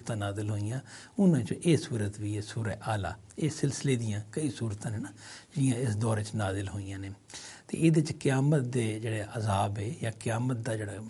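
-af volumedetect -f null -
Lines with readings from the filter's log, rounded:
mean_volume: -30.6 dB
max_volume: -11.6 dB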